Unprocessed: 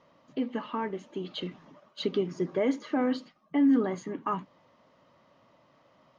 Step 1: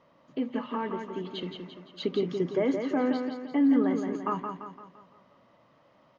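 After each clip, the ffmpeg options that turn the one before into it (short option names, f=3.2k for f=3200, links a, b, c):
-filter_complex "[0:a]highshelf=f=5.5k:g=-8,asplit=2[a][b];[b]aecho=0:1:171|342|513|684|855|1026:0.501|0.241|0.115|0.0554|0.0266|0.0128[c];[a][c]amix=inputs=2:normalize=0"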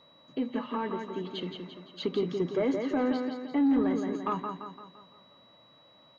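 -af "asoftclip=type=tanh:threshold=-18.5dB,aeval=exprs='val(0)+0.00112*sin(2*PI*3900*n/s)':c=same"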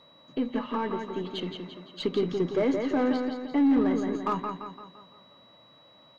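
-af "aeval=exprs='0.112*(cos(1*acos(clip(val(0)/0.112,-1,1)))-cos(1*PI/2))+0.00282*(cos(8*acos(clip(val(0)/0.112,-1,1)))-cos(8*PI/2))':c=same,volume=2.5dB"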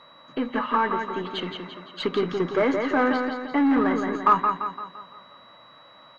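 -af "equalizer=f=1.4k:w=0.77:g=13.5"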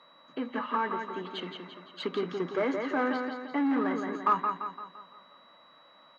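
-af "highpass=f=160:w=0.5412,highpass=f=160:w=1.3066,volume=-7dB"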